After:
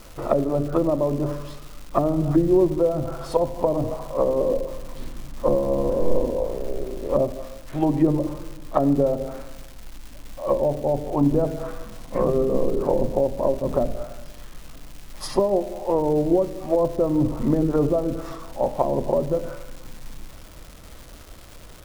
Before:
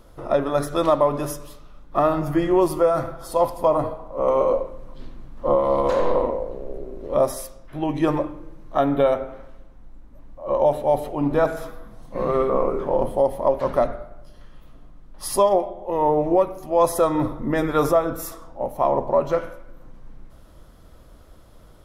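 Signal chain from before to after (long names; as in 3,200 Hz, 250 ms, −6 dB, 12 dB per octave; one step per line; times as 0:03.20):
treble cut that deepens with the level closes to 380 Hz, closed at −18 dBFS
surface crackle 600 per second −39 dBFS
on a send: convolution reverb RT60 1.0 s, pre-delay 64 ms, DRR 19 dB
on the sum: level +4 dB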